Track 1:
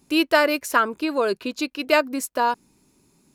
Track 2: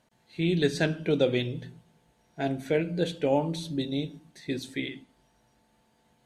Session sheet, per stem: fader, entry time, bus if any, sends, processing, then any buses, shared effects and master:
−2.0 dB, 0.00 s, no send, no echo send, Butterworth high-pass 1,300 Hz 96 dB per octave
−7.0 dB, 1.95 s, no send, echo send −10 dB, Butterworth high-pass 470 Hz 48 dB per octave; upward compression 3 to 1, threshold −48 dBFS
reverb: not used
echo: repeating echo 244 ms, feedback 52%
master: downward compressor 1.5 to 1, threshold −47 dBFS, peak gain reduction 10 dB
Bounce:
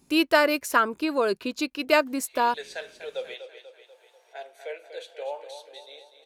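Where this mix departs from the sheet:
stem 1: missing Butterworth high-pass 1,300 Hz 96 dB per octave
master: missing downward compressor 1.5 to 1, threshold −47 dBFS, peak gain reduction 10 dB

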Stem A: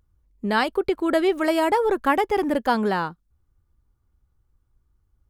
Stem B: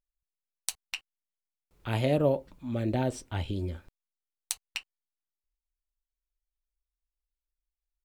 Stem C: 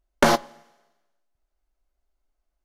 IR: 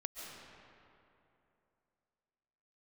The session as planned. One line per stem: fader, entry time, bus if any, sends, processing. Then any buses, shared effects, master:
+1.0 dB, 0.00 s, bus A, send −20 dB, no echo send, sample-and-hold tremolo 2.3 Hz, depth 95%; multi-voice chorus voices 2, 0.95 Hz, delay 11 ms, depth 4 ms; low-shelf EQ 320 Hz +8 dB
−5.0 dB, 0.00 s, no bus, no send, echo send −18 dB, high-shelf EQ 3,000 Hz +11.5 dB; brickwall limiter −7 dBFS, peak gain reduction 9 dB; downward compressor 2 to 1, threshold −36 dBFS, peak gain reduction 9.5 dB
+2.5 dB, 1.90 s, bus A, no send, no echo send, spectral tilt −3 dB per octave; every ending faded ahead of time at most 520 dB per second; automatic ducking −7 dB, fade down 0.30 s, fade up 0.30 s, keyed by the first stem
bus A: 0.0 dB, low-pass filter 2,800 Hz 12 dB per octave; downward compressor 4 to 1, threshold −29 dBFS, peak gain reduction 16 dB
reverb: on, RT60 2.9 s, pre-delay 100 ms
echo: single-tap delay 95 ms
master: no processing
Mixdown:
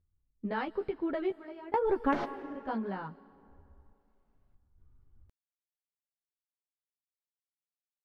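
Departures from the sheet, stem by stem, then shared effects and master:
stem B: muted
stem C: missing spectral tilt −3 dB per octave

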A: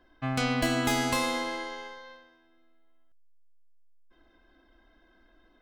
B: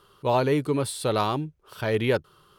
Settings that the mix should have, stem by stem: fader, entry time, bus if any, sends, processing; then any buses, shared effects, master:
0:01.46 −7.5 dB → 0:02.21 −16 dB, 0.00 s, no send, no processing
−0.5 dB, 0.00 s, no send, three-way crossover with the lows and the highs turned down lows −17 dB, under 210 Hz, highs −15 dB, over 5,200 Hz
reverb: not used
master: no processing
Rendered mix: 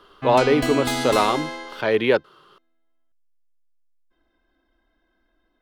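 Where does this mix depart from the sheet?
stem A −7.5 dB → +2.0 dB
stem B −0.5 dB → +6.0 dB

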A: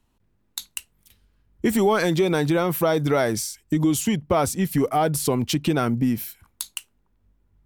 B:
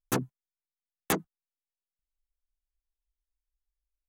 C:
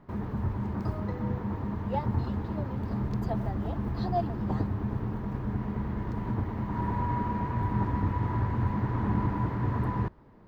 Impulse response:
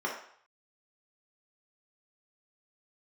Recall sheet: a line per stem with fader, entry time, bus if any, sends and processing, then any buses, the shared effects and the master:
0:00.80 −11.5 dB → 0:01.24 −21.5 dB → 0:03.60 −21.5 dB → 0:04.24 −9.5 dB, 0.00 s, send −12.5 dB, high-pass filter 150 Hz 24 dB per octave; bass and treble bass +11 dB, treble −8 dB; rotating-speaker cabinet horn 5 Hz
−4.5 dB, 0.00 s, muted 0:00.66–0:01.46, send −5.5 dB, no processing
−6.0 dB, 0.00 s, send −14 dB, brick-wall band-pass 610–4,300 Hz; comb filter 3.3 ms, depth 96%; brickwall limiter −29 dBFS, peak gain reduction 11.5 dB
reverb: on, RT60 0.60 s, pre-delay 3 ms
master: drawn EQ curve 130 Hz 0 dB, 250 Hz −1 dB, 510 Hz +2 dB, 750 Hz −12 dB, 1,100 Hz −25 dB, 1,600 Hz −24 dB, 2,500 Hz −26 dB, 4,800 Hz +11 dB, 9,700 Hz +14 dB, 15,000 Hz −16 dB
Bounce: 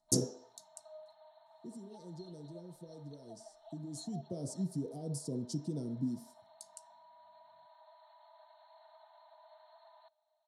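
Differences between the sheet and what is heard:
stem A −11.5 dB → −21.0 dB
stem C: send off

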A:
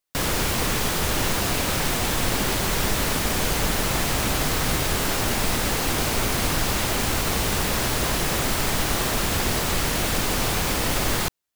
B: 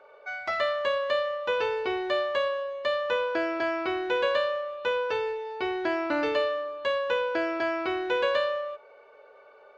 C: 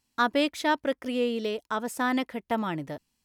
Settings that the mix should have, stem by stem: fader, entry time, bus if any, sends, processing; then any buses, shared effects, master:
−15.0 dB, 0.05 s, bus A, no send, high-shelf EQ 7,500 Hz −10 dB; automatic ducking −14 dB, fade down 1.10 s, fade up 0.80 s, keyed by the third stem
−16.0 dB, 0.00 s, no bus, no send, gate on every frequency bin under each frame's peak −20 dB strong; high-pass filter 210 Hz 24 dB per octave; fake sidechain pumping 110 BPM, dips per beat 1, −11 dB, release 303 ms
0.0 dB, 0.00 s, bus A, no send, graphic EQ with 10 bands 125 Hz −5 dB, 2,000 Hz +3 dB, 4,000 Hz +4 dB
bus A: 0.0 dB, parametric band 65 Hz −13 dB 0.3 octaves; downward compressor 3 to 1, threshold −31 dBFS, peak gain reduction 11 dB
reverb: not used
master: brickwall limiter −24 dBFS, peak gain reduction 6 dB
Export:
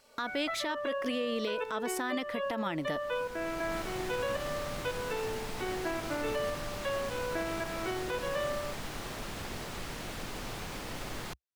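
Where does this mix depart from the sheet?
stem B −16.0 dB → −6.0 dB
stem C 0.0 dB → +8.5 dB

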